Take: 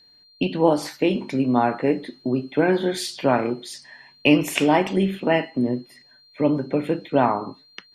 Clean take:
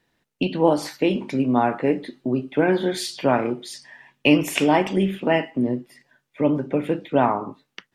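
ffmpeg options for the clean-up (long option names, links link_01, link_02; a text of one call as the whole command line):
ffmpeg -i in.wav -af "bandreject=frequency=4200:width=30" out.wav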